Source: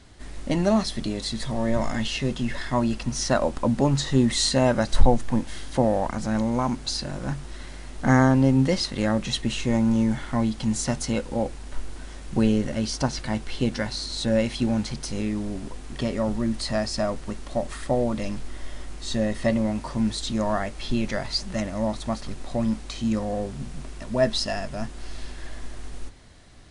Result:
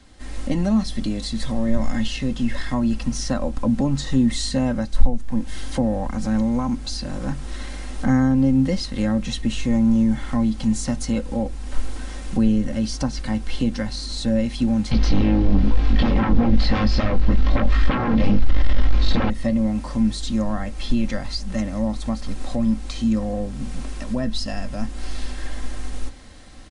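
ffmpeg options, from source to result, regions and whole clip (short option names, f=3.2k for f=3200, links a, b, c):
-filter_complex "[0:a]asettb=1/sr,asplit=3[a][b][c];[a]atrim=end=14.914[d];[b]atrim=start=14.91:end=19.3,asetpts=PTS-STARTPTS,afade=t=in:d=0.004:c=qsin,afade=t=out:st=4.386:d=0.004:c=qsin,flanger=delay=18:depth=4:speed=1.1,aeval=exprs='0.178*sin(PI/2*4.47*val(0)/0.178)':c=same,lowpass=f=4.4k:w=0.5412,lowpass=f=4.4k:w=1.3066[e];[c]atrim=start=19.296[f];[d][e]acrossfade=d=0.004:c1=hsin:c2=qsin[g];[g][f]acrossfade=d=0.004:c1=qsin:c2=hsin,acrossover=split=220[h][i];[i]acompressor=threshold=-41dB:ratio=2[j];[h][j]amix=inputs=2:normalize=0,aecho=1:1:3.8:0.5,dynaudnorm=f=170:g=3:m=6.5dB,volume=-1dB"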